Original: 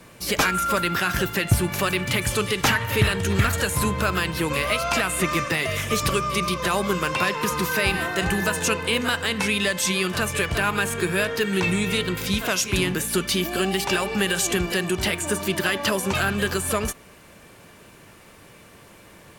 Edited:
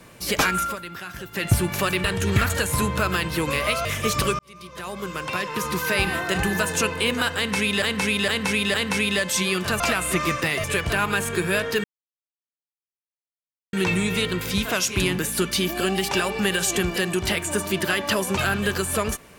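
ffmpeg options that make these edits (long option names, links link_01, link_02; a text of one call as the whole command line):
ffmpeg -i in.wav -filter_complex "[0:a]asplit=12[link_01][link_02][link_03][link_04][link_05][link_06][link_07][link_08][link_09][link_10][link_11][link_12];[link_01]atrim=end=0.76,asetpts=PTS-STARTPTS,afade=type=out:start_time=0.62:duration=0.14:silence=0.237137[link_13];[link_02]atrim=start=0.76:end=1.31,asetpts=PTS-STARTPTS,volume=-12.5dB[link_14];[link_03]atrim=start=1.31:end=2.042,asetpts=PTS-STARTPTS,afade=type=in:duration=0.14:silence=0.237137[link_15];[link_04]atrim=start=3.068:end=4.882[link_16];[link_05]atrim=start=5.718:end=6.26,asetpts=PTS-STARTPTS,afade=type=out:start_time=0.538:duration=0.004:curve=hsin[link_17];[link_06]atrim=start=6.26:end=9.692,asetpts=PTS-STARTPTS,afade=type=in:duration=1.62[link_18];[link_07]atrim=start=9.228:end=9.692[link_19];[link_08]atrim=start=9.228:end=9.692[link_20];[link_09]atrim=start=9.228:end=10.292[link_21];[link_10]atrim=start=4.878:end=5.722[link_22];[link_11]atrim=start=10.288:end=11.49,asetpts=PTS-STARTPTS,afade=type=out:start_time=1.198:duration=0.004:curve=hsin,apad=pad_dur=1.89[link_23];[link_12]atrim=start=11.49,asetpts=PTS-STARTPTS,afade=type=in:duration=0.004:curve=hsin[link_24];[link_13][link_14][link_15]concat=n=3:v=0:a=1[link_25];[link_25][link_16]acrossfade=duration=0.004:curve1=hsin:curve2=hsin[link_26];[link_17][link_18]concat=n=2:v=0:a=1[link_27];[link_26][link_27]acrossfade=duration=0.004:curve1=hsin:curve2=hsin[link_28];[link_28][link_19]acrossfade=duration=0.004:curve1=hsin:curve2=hsin[link_29];[link_29][link_20]acrossfade=duration=0.004:curve1=hsin:curve2=hsin[link_30];[link_30][link_21]acrossfade=duration=0.004:curve1=hsin:curve2=hsin[link_31];[link_31][link_22]acrossfade=duration=0.004:curve1=hsin:curve2=hsin[link_32];[link_23][link_24]concat=n=2:v=0:a=1[link_33];[link_32][link_33]acrossfade=duration=0.004:curve1=hsin:curve2=hsin" out.wav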